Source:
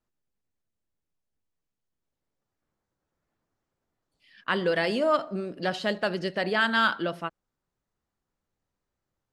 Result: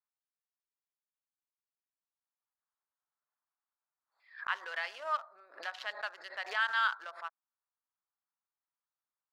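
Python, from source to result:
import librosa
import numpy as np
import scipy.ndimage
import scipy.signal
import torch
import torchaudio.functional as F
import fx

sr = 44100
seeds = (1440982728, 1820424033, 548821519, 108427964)

y = fx.wiener(x, sr, points=15)
y = scipy.signal.sosfilt(scipy.signal.butter(4, 970.0, 'highpass', fs=sr, output='sos'), y)
y = fx.high_shelf(y, sr, hz=3400.0, db=-9.0)
y = fx.pre_swell(y, sr, db_per_s=150.0)
y = y * 10.0 ** (-4.0 / 20.0)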